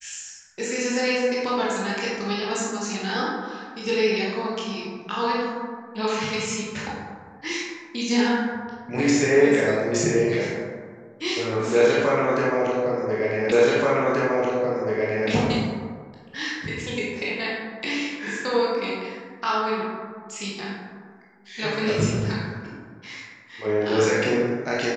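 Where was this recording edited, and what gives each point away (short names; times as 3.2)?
13.52 repeat of the last 1.78 s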